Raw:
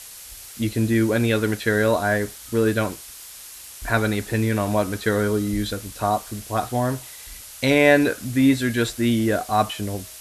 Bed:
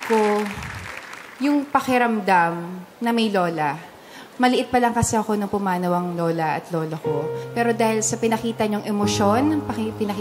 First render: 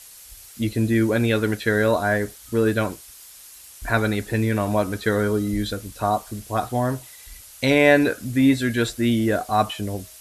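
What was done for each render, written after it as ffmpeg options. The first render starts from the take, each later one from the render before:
-af "afftdn=nr=6:nf=-41"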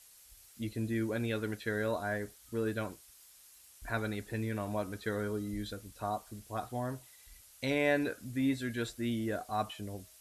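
-af "volume=-14dB"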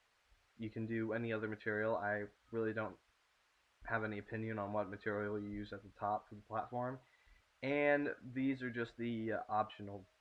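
-af "lowpass=1.8k,lowshelf=f=400:g=-9.5"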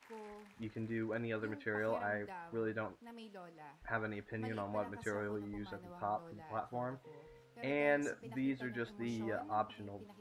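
-filter_complex "[1:a]volume=-32.5dB[a];[0:a][a]amix=inputs=2:normalize=0"

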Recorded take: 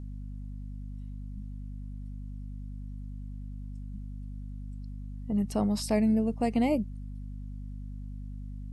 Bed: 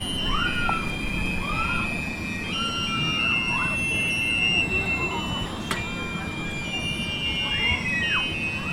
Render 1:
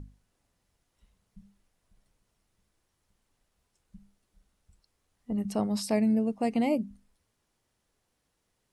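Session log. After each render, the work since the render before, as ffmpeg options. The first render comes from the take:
-af "bandreject=f=50:t=h:w=6,bandreject=f=100:t=h:w=6,bandreject=f=150:t=h:w=6,bandreject=f=200:t=h:w=6,bandreject=f=250:t=h:w=6"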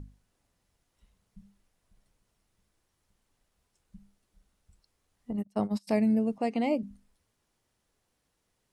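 -filter_complex "[0:a]asplit=3[a][b][c];[a]afade=t=out:st=5.31:d=0.02[d];[b]agate=range=-30dB:threshold=-30dB:ratio=16:release=100:detection=peak,afade=t=in:st=5.31:d=0.02,afade=t=out:st=5.87:d=0.02[e];[c]afade=t=in:st=5.87:d=0.02[f];[d][e][f]amix=inputs=3:normalize=0,asettb=1/sr,asplit=3[g][h][i];[g]atrim=end=6.384[j];[h]atrim=start=6.38:end=6.83,asetpts=PTS-STARTPTS,afade=t=in:d=0.004:c=qsin,afade=t=out:st=0.446:d=0.004:c=qsin,highpass=230,lowpass=6.7k[k];[i]atrim=start=6.826[l];[j][k]acrossfade=d=0.004:c1=hsin:c2=qsin[m];[m][l]acrossfade=d=0.004:c1=qsin:c2=hsin"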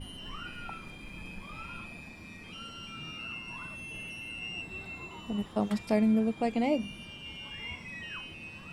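-filter_complex "[1:a]volume=-17.5dB[a];[0:a][a]amix=inputs=2:normalize=0"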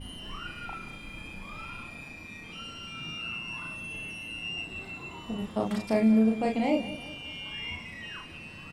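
-filter_complex "[0:a]asplit=2[a][b];[b]adelay=36,volume=-2.5dB[c];[a][c]amix=inputs=2:normalize=0,aecho=1:1:187|374|561|748|935:0.178|0.0871|0.0427|0.0209|0.0103"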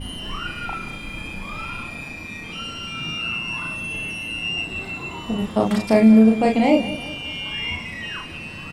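-af "volume=10dB"

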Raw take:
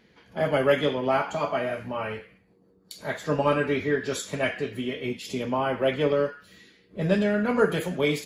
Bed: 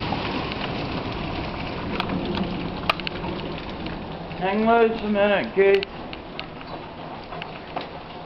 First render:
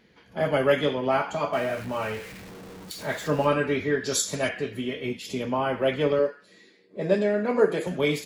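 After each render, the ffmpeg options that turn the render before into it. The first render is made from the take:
-filter_complex "[0:a]asettb=1/sr,asplit=3[a][b][c];[a]atrim=end=1.534[d];[b]atrim=start=1.53:end=3.47,asetpts=PTS-STARTPTS,afade=t=in:d=0.004:c=qsin,afade=t=out:st=1.936:d=0.004:c=qsin,aeval=exprs='val(0)+0.5*0.0133*sgn(val(0))':c=same[e];[c]atrim=start=3.466[f];[d][e]acrossfade=d=0.004:c1=hsin:c2=qsin[g];[g][f]acrossfade=d=0.004:c1=qsin:c2=hsin,asettb=1/sr,asplit=3[h][i][j];[h]atrim=end=4.044[k];[i]atrim=start=4.04:end=4.49,asetpts=PTS-STARTPTS,afade=t=in:d=0.004:c=qsin,afade=t=out:st=0.446:d=0.004:c=qsin,highshelf=f=3.6k:t=q:w=1.5:g=8.5[l];[j]atrim=start=4.486[m];[k][l]acrossfade=d=0.004:c1=hsin:c2=qsin[n];[n][m]acrossfade=d=0.004:c1=qsin:c2=hsin,asettb=1/sr,asplit=3[o][p][q];[o]atrim=end=6.194[r];[p]atrim=start=6.19:end=7.87,asetpts=PTS-STARTPTS,afade=t=in:d=0.004:c=qsin,afade=t=out:st=1.676:d=0.004:c=qsin,highpass=230,equalizer=f=380:t=q:w=4:g=4,equalizer=f=570:t=q:w=4:g=3,equalizer=f=1.4k:t=q:w=4:g=-7,equalizer=f=3k:t=q:w=4:g=-8,equalizer=f=6.1k:t=q:w=4:g=-4,lowpass=f=9.3k:w=0.5412,lowpass=f=9.3k:w=1.3066[s];[q]atrim=start=7.866[t];[r][s]acrossfade=d=0.004:c1=hsin:c2=qsin[u];[u][t]acrossfade=d=0.004:c1=qsin:c2=hsin"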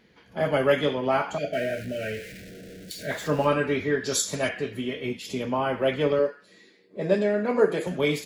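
-filter_complex "[0:a]asettb=1/sr,asplit=3[a][b][c];[a]atrim=end=1.384[d];[b]atrim=start=1.38:end=3.11,asetpts=PTS-STARTPTS,afade=t=in:d=0.004:c=qsin,afade=t=out:st=1.726:d=0.004:c=qsin,asuperstop=centerf=1000:order=12:qfactor=1.3[e];[c]atrim=start=3.106[f];[d][e]acrossfade=d=0.004:c1=hsin:c2=qsin[g];[g][f]acrossfade=d=0.004:c1=qsin:c2=hsin"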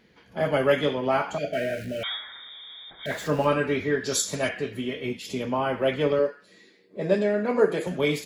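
-filter_complex "[0:a]asettb=1/sr,asplit=3[a][b][c];[a]atrim=end=2.034[d];[b]atrim=start=2.03:end=3.06,asetpts=PTS-STARTPTS,afade=t=in:d=0.004:c=qsin,afade=t=out:st=1.026:d=0.004:c=qsin,lowpass=f=3.2k:t=q:w=0.5098,lowpass=f=3.2k:t=q:w=0.6013,lowpass=f=3.2k:t=q:w=0.9,lowpass=f=3.2k:t=q:w=2.563,afreqshift=-3800[e];[c]atrim=start=3.056[f];[d][e]acrossfade=d=0.004:c1=hsin:c2=qsin[g];[g][f]acrossfade=d=0.004:c1=qsin:c2=hsin"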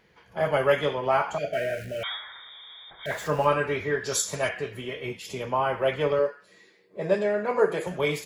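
-af "equalizer=f=250:t=o:w=0.67:g=-11,equalizer=f=1k:t=o:w=0.67:g=4,equalizer=f=4k:t=o:w=0.67:g=-4"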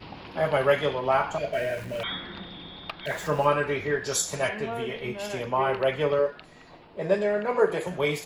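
-filter_complex "[1:a]volume=-16dB[a];[0:a][a]amix=inputs=2:normalize=0"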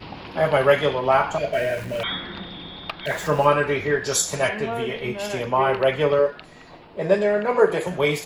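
-af "volume=5dB"

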